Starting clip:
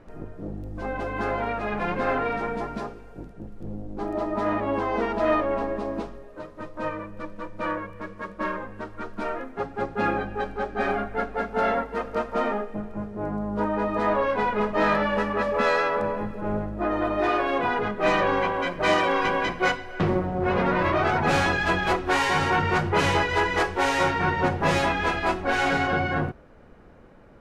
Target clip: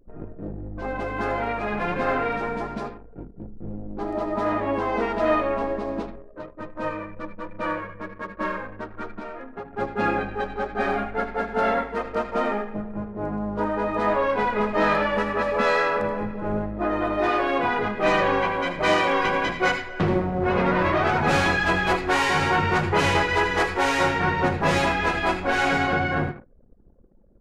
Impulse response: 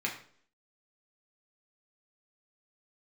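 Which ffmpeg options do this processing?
-filter_complex "[0:a]asettb=1/sr,asplit=3[s0][s1][s2];[s0]atrim=end=9.124[s3];[s1]atrim=start=9.12:end=9.73,asetpts=PTS-STARTPTS,afade=t=in:d=0.004:c=qsin,afade=t=out:st=0.606:d=0.004:c=qsin,acompressor=threshold=0.0224:ratio=8[s4];[s2]atrim=start=9.726[s5];[s3][s4]acrossfade=d=0.004:c1=hsin:c2=qsin[s6];[s6][s5]acrossfade=d=0.004:c1=qsin:c2=hsin,asplit=2[s7][s8];[1:a]atrim=start_sample=2205,highshelf=f=2000:g=11,adelay=77[s9];[s8][s9]afir=irnorm=-1:irlink=0,volume=0.112[s10];[s7][s10]amix=inputs=2:normalize=0,anlmdn=0.1,volume=1.12"

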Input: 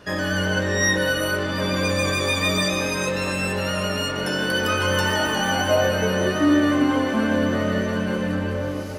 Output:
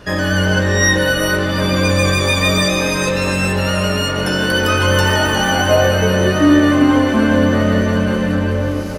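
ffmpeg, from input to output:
-filter_complex "[0:a]lowshelf=f=69:g=12,asplit=2[s0][s1];[s1]aecho=0:1:410:0.211[s2];[s0][s2]amix=inputs=2:normalize=0,volume=2"

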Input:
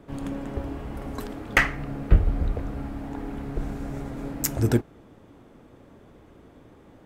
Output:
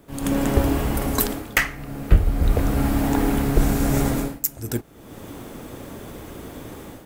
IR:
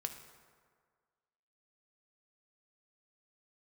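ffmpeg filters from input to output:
-af "aemphasis=mode=production:type=75fm,dynaudnorm=f=110:g=5:m=5.96,volume=0.891"

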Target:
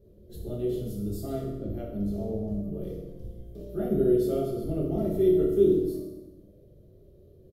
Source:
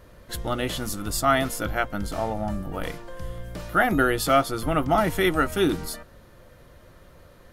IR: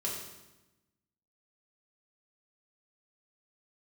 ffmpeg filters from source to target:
-filter_complex "[0:a]asettb=1/sr,asplit=3[s0][s1][s2];[s0]atrim=end=1.284[s3];[s1]atrim=start=1.28:end=1.69,asetpts=PTS-STARTPTS,afade=t=in:d=0.004:c=qsin,afade=t=out:st=0.406:d=0.004:c=qsin,adynamicsmooth=sensitivity=1:basefreq=970[s4];[s2]atrim=start=1.686[s5];[s3][s4]acrossfade=d=0.004:c1=hsin:c2=qsin[s6];[s6][s5]acrossfade=d=0.004:c1=qsin:c2=hsin,firequalizer=gain_entry='entry(270,0);entry(410,4);entry(940,-27);entry(1700,-29);entry(3500,-16);entry(8600,-18);entry(13000,-8)':delay=0.05:min_phase=1[s7];[1:a]atrim=start_sample=2205[s8];[s7][s8]afir=irnorm=-1:irlink=0,volume=0.473"

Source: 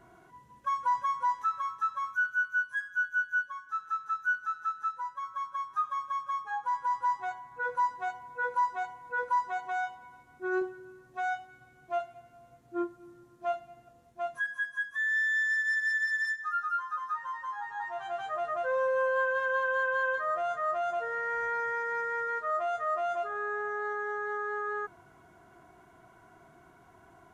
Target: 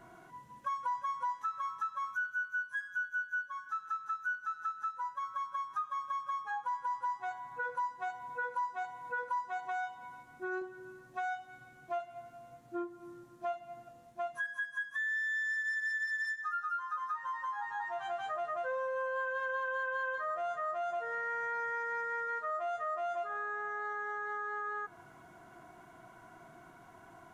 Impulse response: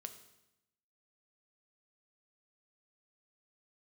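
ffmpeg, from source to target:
-filter_complex "[0:a]equalizer=f=62:w=1.3:g=-9.5,asplit=2[s0][s1];[1:a]atrim=start_sample=2205[s2];[s1][s2]afir=irnorm=-1:irlink=0,volume=0.631[s3];[s0][s3]amix=inputs=2:normalize=0,acompressor=threshold=0.0158:ratio=3,equalizer=f=410:w=7:g=-7.5"

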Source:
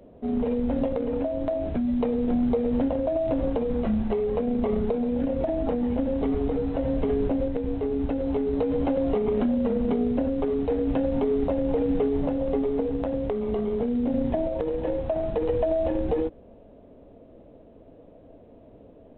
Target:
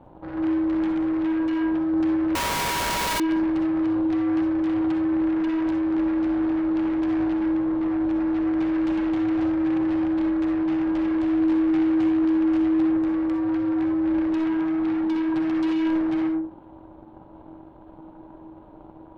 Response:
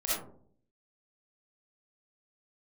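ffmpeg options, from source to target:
-filter_complex "[0:a]aeval=exprs='0.2*(cos(1*acos(clip(val(0)/0.2,-1,1)))-cos(1*PI/2))+0.0282*(cos(3*acos(clip(val(0)/0.2,-1,1)))-cos(3*PI/2))+0.0562*(cos(8*acos(clip(val(0)/0.2,-1,1)))-cos(8*PI/2))':c=same,asettb=1/sr,asplit=3[s0][s1][s2];[s0]atrim=end=11.174[s3];[s1]atrim=start=11.17:end=12.85,asetpts=PTS-STARTPTS,afade=t=in:d=0.004:c=qsin,afade=t=out:st=1.676:d=0.004:c=qsin,asplit=2[s4][s5];[s5]adelay=20,volume=0.631[s6];[s4][s6]amix=inputs=2:normalize=0,atrim=end_sample=74088[s7];[s2]atrim=start=12.846[s8];[s3][s7]acrossfade=d=0.004:c1=hsin:c2=qsin[s9];[s9][s8]acrossfade=d=0.004:c1=qsin:c2=hsin,asoftclip=type=tanh:threshold=0.075,alimiter=level_in=3.35:limit=0.0631:level=0:latency=1,volume=0.299,asplit=2[s10][s11];[1:a]atrim=start_sample=2205,afade=t=out:st=0.27:d=0.01,atrim=end_sample=12348[s12];[s11][s12]afir=irnorm=-1:irlink=0,volume=0.422[s13];[s10][s13]amix=inputs=2:normalize=0,aeval=exprs='val(0)*sin(2*PI*320*n/s)':c=same,asettb=1/sr,asplit=3[s14][s15][s16];[s14]atrim=end=2.354[s17];[s15]atrim=start=2.35:end=3.2,asetpts=PTS-STARTPTS,afade=t=in:d=0.004:c=qsin,afade=t=out:st=0.846:d=0.004:c=qsin,aeval=exprs='(mod(20*val(0)+1,2)-1)/20':c=same[s18];[s16]atrim=start=3.196[s19];[s17][s18]acrossfade=d=0.004:c1=hsin:c2=qsin[s20];[s20][s19]acrossfade=d=0.004:c1=qsin:c2=hsin,volume=1.68"

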